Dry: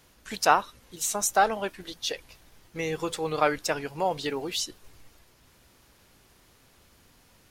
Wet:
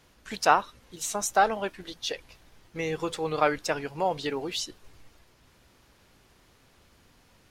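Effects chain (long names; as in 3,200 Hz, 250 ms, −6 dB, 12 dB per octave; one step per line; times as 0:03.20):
high-shelf EQ 8,100 Hz −9 dB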